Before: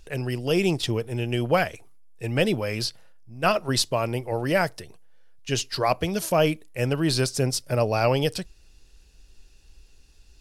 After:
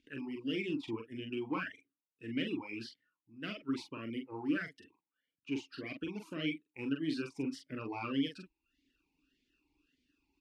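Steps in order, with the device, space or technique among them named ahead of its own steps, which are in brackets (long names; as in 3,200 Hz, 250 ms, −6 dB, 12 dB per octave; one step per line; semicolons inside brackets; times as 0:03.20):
talk box (tube saturation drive 14 dB, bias 0.35; formant filter swept between two vowels i-u 1.7 Hz)
double-tracking delay 44 ms −4 dB
reverb reduction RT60 0.57 s
level +1 dB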